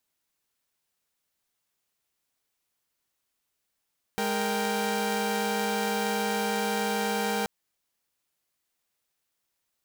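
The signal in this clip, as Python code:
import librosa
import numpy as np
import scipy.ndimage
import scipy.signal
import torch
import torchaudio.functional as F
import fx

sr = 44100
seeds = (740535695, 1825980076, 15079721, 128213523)

y = fx.chord(sr, length_s=3.28, notes=(56, 70, 79), wave='saw', level_db=-28.0)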